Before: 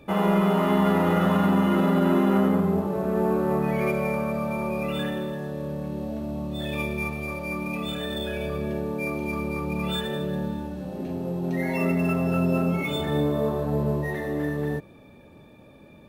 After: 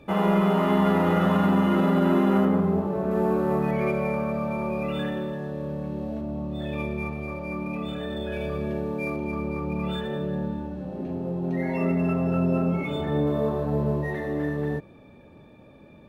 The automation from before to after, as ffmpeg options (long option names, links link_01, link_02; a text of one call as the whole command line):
ffmpeg -i in.wav -af "asetnsamples=nb_out_samples=441:pad=0,asendcmd='2.45 lowpass f 2500;3.11 lowpass f 5900;3.71 lowpass f 2800;6.21 lowpass f 1500;8.32 lowpass f 3600;9.16 lowpass f 1600;13.27 lowpass f 3300',lowpass=frequency=6100:poles=1" out.wav